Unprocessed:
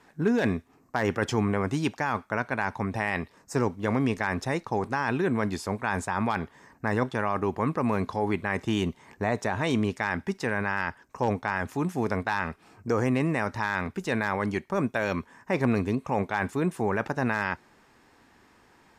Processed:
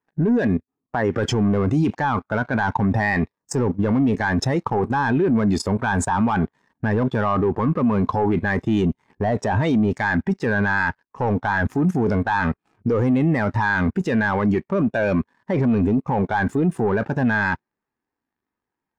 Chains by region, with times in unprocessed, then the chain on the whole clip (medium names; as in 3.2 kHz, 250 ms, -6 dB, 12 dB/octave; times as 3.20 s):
0.47–1.12 s: compression 2:1, threshold -38 dBFS + gate with hold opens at -53 dBFS, closes at -59 dBFS
whole clip: waveshaping leveller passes 3; level held to a coarse grid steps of 14 dB; spectral contrast expander 1.5:1; trim +5.5 dB